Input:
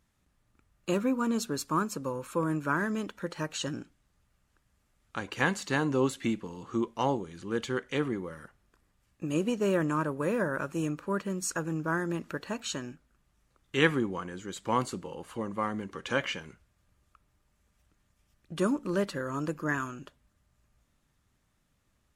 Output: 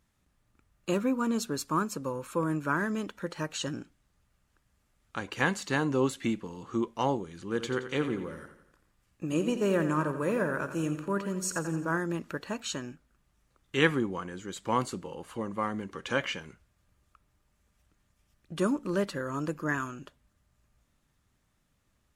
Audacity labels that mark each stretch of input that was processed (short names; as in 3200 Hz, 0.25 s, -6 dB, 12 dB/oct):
7.450000	11.980000	feedback echo 86 ms, feedback 50%, level -10.5 dB